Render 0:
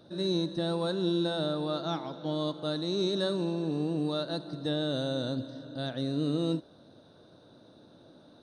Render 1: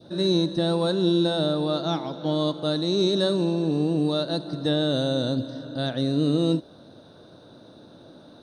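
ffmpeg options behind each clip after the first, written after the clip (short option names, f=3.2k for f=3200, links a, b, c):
-af "adynamicequalizer=threshold=0.00501:dfrequency=1400:dqfactor=1:tfrequency=1400:tqfactor=1:attack=5:release=100:ratio=0.375:range=2:mode=cutabove:tftype=bell,volume=7.5dB"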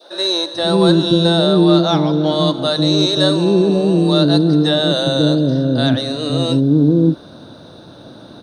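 -filter_complex "[0:a]acrossover=split=480[a][b];[a]adelay=540[c];[c][b]amix=inputs=2:normalize=0,acontrast=84,volume=4.5dB"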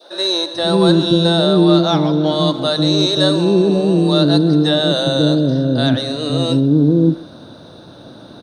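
-filter_complex "[0:a]asplit=2[a][b];[b]adelay=130,highpass=300,lowpass=3.4k,asoftclip=type=hard:threshold=-10dB,volume=-17dB[c];[a][c]amix=inputs=2:normalize=0"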